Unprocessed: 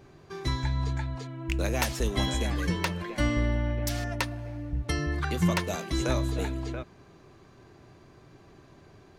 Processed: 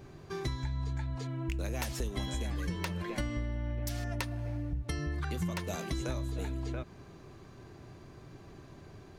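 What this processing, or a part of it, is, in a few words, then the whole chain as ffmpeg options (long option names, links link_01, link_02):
ASMR close-microphone chain: -af "lowshelf=frequency=230:gain=5,acompressor=threshold=-32dB:ratio=6,highshelf=frequency=7400:gain=4"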